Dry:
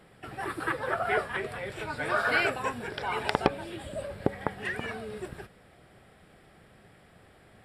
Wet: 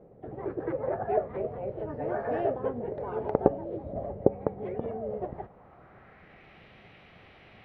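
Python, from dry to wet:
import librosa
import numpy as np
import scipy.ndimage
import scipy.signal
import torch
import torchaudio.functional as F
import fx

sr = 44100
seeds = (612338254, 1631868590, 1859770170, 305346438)

y = fx.formant_shift(x, sr, semitones=3)
y = fx.filter_sweep_lowpass(y, sr, from_hz=510.0, to_hz=2900.0, start_s=4.96, end_s=6.6, q=1.9)
y = F.gain(torch.from_numpy(y), 1.5).numpy()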